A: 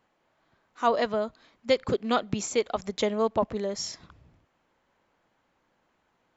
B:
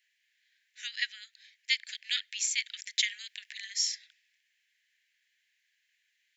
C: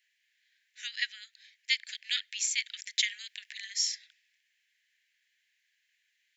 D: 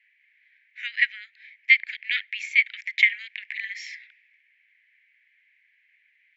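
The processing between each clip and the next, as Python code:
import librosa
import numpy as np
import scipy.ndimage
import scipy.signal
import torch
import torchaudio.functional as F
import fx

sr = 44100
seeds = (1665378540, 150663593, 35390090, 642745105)

y1 = scipy.signal.sosfilt(scipy.signal.butter(16, 1700.0, 'highpass', fs=sr, output='sos'), x)
y1 = fx.rider(y1, sr, range_db=4, speed_s=0.5)
y1 = F.gain(torch.from_numpy(y1), 6.0).numpy()
y2 = y1
y3 = fx.lowpass_res(y2, sr, hz=2200.0, q=5.9)
y3 = F.gain(torch.from_numpy(y3), 1.5).numpy()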